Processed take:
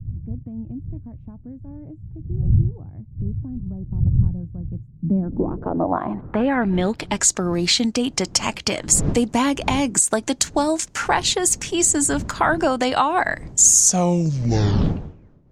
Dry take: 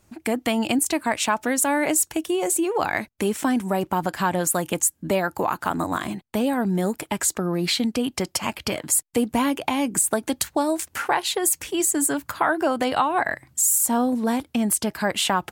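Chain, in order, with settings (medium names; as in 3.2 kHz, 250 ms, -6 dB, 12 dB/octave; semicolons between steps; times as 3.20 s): tape stop on the ending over 1.98 s; wind noise 180 Hz -32 dBFS; low-pass sweep 110 Hz -> 6.6 kHz, 4.79–7.25 s; trim +2.5 dB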